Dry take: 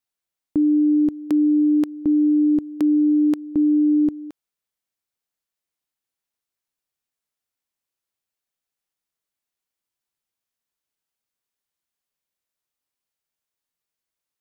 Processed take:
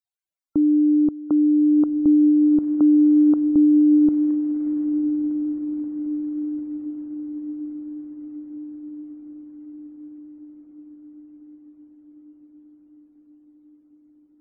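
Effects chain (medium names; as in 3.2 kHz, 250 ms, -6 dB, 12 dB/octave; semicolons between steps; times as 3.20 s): echo that smears into a reverb 1441 ms, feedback 61%, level -9 dB; loudest bins only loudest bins 64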